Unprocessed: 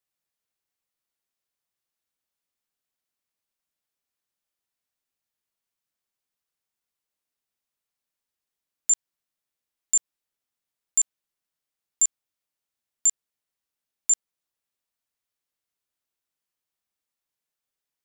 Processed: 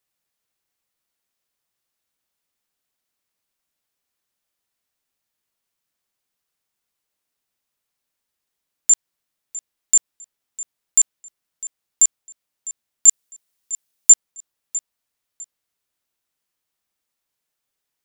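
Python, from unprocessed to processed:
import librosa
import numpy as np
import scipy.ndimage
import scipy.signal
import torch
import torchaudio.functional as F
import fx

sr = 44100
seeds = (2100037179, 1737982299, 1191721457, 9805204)

p1 = fx.high_shelf(x, sr, hz=3700.0, db=8.0, at=(13.08, 14.13))
p2 = p1 + fx.echo_feedback(p1, sr, ms=653, feedback_pct=25, wet_db=-17, dry=0)
y = F.gain(torch.from_numpy(p2), 6.5).numpy()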